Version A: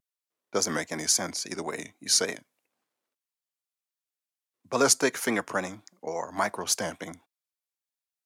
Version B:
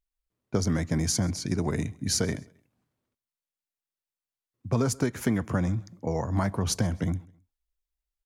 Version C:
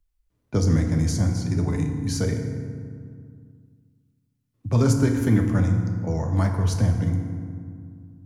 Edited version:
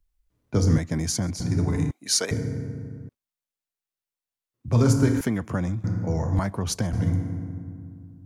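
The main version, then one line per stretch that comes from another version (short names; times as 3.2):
C
0.78–1.4 from B
1.91–2.31 from A
3.09–4.68 from B
5.21–5.84 from B
6.39–6.93 from B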